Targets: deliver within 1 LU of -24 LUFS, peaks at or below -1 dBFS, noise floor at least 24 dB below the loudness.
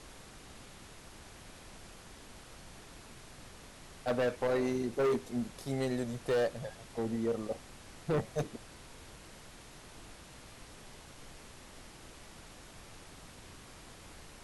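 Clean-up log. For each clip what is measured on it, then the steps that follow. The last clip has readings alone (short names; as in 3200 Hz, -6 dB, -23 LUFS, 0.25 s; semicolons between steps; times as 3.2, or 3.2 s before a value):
clipped 1.3%; flat tops at -26.0 dBFS; noise floor -53 dBFS; noise floor target -59 dBFS; loudness -34.5 LUFS; peak -26.0 dBFS; loudness target -24.0 LUFS
-> clip repair -26 dBFS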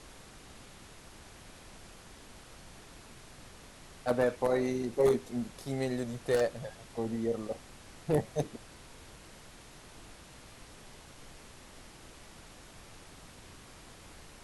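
clipped 0.0%; noise floor -53 dBFS; noise floor target -57 dBFS
-> noise print and reduce 6 dB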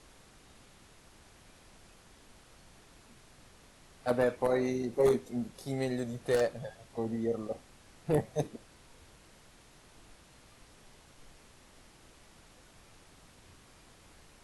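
noise floor -59 dBFS; loudness -32.5 LUFS; peak -17.0 dBFS; loudness target -24.0 LUFS
-> gain +8.5 dB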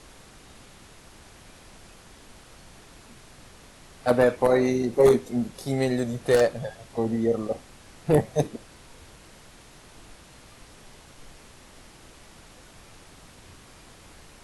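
loudness -24.0 LUFS; peak -8.5 dBFS; noise floor -51 dBFS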